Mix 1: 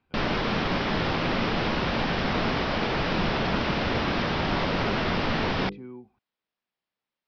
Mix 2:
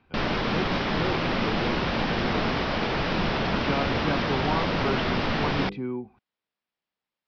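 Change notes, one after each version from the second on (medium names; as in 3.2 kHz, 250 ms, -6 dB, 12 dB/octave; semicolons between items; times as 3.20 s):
speech +10.5 dB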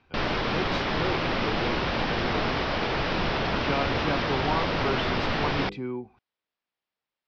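speech: remove distance through air 140 m; master: add peaking EQ 200 Hz -5 dB 0.77 oct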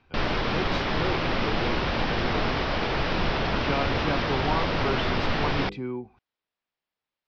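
master: add bass shelf 69 Hz +6 dB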